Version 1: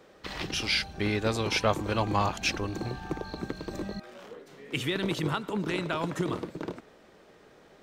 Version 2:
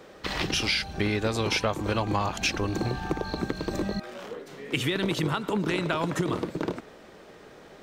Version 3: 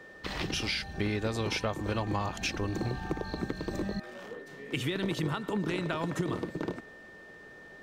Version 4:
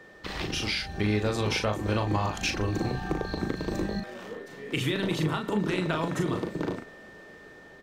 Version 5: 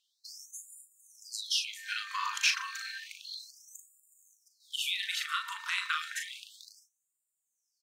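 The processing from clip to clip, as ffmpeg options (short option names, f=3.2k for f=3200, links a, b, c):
-af "acompressor=threshold=-30dB:ratio=6,volume=7dB"
-af "lowshelf=f=390:g=3.5,aeval=exprs='val(0)+0.00708*sin(2*PI*1800*n/s)':c=same,volume=-6.5dB"
-filter_complex "[0:a]dynaudnorm=f=300:g=5:m=3dB,asplit=2[a][b];[b]adelay=38,volume=-5.5dB[c];[a][c]amix=inputs=2:normalize=0"
-af "agate=range=-13dB:threshold=-41dB:ratio=16:detection=peak,equalizer=f=680:t=o:w=1.2:g=-7,afftfilt=real='re*gte(b*sr/1024,890*pow(7000/890,0.5+0.5*sin(2*PI*0.31*pts/sr)))':imag='im*gte(b*sr/1024,890*pow(7000/890,0.5+0.5*sin(2*PI*0.31*pts/sr)))':win_size=1024:overlap=0.75,volume=3.5dB"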